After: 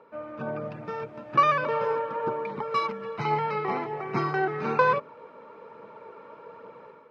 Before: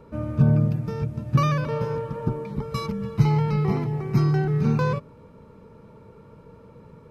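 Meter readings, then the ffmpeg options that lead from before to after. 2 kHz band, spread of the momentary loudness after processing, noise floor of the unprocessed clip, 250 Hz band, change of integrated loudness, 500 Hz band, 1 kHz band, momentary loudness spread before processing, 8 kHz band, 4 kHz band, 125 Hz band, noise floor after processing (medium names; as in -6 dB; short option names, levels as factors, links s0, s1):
+6.0 dB, 24 LU, -49 dBFS, -11.5 dB, -3.5 dB, +1.0 dB, +6.5 dB, 10 LU, no reading, -1.0 dB, -18.0 dB, -50 dBFS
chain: -af "dynaudnorm=f=380:g=3:m=2.99,aphaser=in_gain=1:out_gain=1:delay=4:decay=0.31:speed=1.2:type=triangular,highpass=590,lowpass=2500"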